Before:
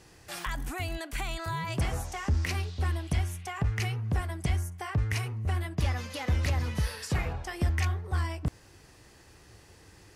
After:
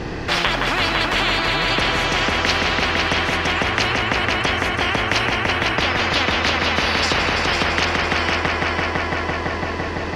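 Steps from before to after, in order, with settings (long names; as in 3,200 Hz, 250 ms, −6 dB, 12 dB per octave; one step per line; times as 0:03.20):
low-shelf EQ 220 Hz +11 dB
in parallel at 0 dB: downward compressor, threshold −25 dBFS, peak gain reduction 12 dB
on the sum: high-frequency loss of the air 240 metres
on a send: echo machine with several playback heads 168 ms, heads all three, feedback 65%, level −9.5 dB
on the sum: every bin compressed towards the loudest bin 10 to 1
level +2.5 dB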